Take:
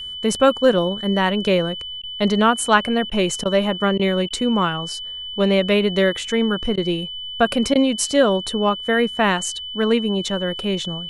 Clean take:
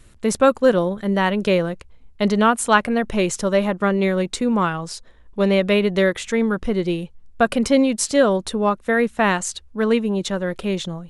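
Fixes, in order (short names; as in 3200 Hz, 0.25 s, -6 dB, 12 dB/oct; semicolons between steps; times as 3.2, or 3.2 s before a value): notch 3000 Hz, Q 30; interpolate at 2.02/3.1/3.44/3.98/4.29/6.76/7.74, 13 ms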